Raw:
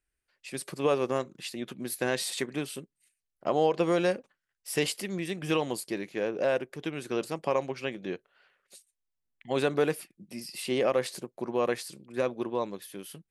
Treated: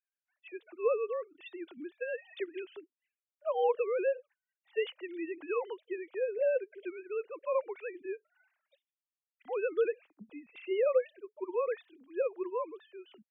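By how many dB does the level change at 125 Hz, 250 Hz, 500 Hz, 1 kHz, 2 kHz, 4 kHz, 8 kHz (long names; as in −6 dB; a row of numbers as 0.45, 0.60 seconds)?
below −30 dB, −11.5 dB, −2.5 dB, −6.0 dB, −7.5 dB, −15.5 dB, below −40 dB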